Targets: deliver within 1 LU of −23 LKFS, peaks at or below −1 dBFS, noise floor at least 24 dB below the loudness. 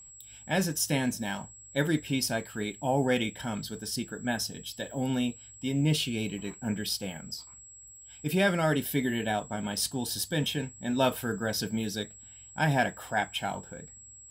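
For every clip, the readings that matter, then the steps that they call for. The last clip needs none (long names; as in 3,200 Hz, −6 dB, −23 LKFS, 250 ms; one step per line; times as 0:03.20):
interfering tone 7,700 Hz; level of the tone −48 dBFS; integrated loudness −30.5 LKFS; sample peak −11.5 dBFS; target loudness −23.0 LKFS
→ notch filter 7,700 Hz, Q 30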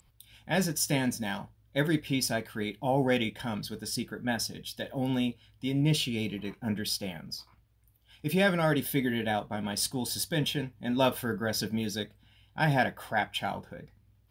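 interfering tone none found; integrated loudness −30.5 LKFS; sample peak −11.5 dBFS; target loudness −23.0 LKFS
→ level +7.5 dB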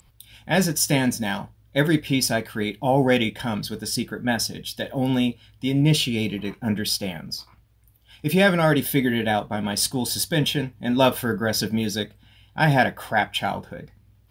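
integrated loudness −23.0 LKFS; sample peak −4.0 dBFS; background noise floor −57 dBFS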